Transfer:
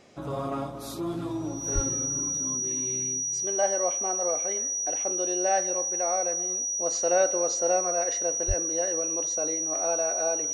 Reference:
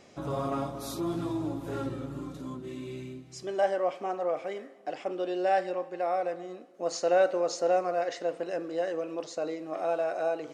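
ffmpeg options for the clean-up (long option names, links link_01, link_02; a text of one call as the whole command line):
ffmpeg -i in.wav -filter_complex "[0:a]bandreject=frequency=5800:width=30,asplit=3[link_01][link_02][link_03];[link_01]afade=type=out:start_time=1.74:duration=0.02[link_04];[link_02]highpass=frequency=140:width=0.5412,highpass=frequency=140:width=1.3066,afade=type=in:start_time=1.74:duration=0.02,afade=type=out:start_time=1.86:duration=0.02[link_05];[link_03]afade=type=in:start_time=1.86:duration=0.02[link_06];[link_04][link_05][link_06]amix=inputs=3:normalize=0,asplit=3[link_07][link_08][link_09];[link_07]afade=type=out:start_time=8.47:duration=0.02[link_10];[link_08]highpass=frequency=140:width=0.5412,highpass=frequency=140:width=1.3066,afade=type=in:start_time=8.47:duration=0.02,afade=type=out:start_time=8.59:duration=0.02[link_11];[link_09]afade=type=in:start_time=8.59:duration=0.02[link_12];[link_10][link_11][link_12]amix=inputs=3:normalize=0" out.wav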